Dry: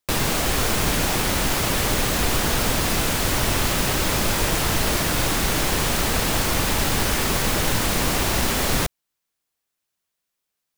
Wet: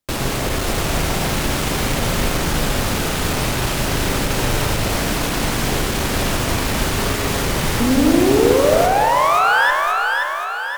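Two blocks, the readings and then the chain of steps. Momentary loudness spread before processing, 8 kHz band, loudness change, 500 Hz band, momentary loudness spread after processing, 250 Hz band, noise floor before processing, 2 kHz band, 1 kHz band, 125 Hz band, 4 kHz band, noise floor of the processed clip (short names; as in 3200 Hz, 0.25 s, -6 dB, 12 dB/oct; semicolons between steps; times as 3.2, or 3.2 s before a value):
0 LU, -1.0 dB, +3.0 dB, +8.0 dB, 6 LU, +6.5 dB, -81 dBFS, +5.0 dB, +7.5 dB, +3.5 dB, +1.0 dB, -23 dBFS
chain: in parallel at -9 dB: decimation with a swept rate 34×, swing 100% 3.8 Hz; on the sum: painted sound rise, 7.8–9.71, 230–1800 Hz -14 dBFS; one-sided clip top -18.5 dBFS; on a send: split-band echo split 560 Hz, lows 0.163 s, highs 0.527 s, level -4 dB; on the sum: spring tank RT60 1.6 s, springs 39 ms, chirp 60 ms, DRR 4.5 dB; Doppler distortion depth 0.36 ms; gain -1 dB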